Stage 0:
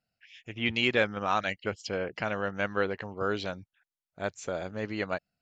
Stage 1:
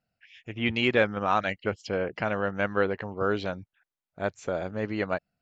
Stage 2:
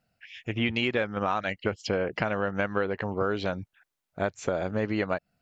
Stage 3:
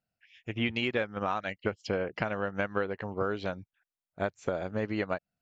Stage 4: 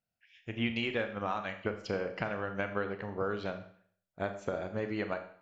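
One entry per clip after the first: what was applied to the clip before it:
high shelf 3400 Hz -11 dB; gain +4 dB
compressor 6:1, threshold -31 dBFS, peak gain reduction 13 dB; gain +7 dB
upward expander 1.5:1, over -46 dBFS; gain -2 dB
Schroeder reverb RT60 0.57 s, combs from 27 ms, DRR 7 dB; gain -3.5 dB

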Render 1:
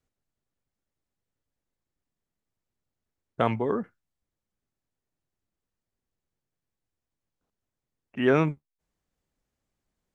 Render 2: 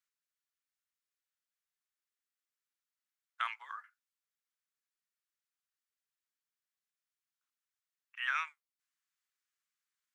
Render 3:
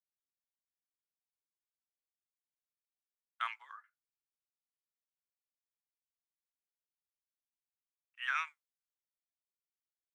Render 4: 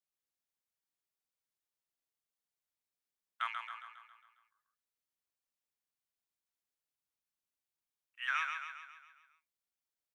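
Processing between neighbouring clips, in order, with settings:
steep high-pass 1200 Hz 36 dB/oct; gain -2.5 dB
three-band expander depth 70%; gain -5.5 dB
feedback echo 0.136 s, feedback 54%, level -5.5 dB

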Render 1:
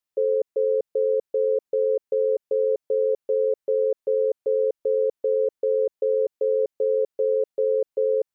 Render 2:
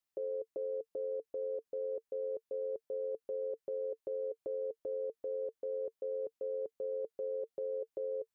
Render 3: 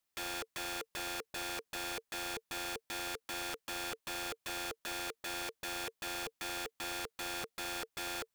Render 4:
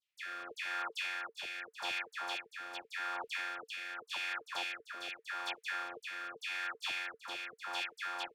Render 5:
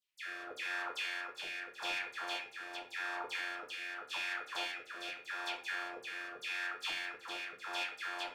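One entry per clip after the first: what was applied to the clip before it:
limiter -26.5 dBFS, peak gain reduction 11 dB; notch 450 Hz, Q 12; gain -3 dB
wrapped overs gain 40 dB; gain +5 dB
LFO band-pass saw down 2.2 Hz 860–3200 Hz; dispersion lows, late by 94 ms, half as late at 1700 Hz; rotary speaker horn 0.85 Hz; gain +10.5 dB
shoebox room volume 36 m³, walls mixed, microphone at 0.49 m; gain -1.5 dB

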